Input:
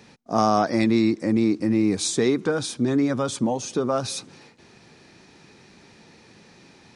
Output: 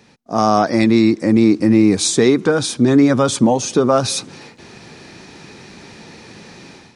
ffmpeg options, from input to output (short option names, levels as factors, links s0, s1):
-af "dynaudnorm=f=250:g=3:m=3.98"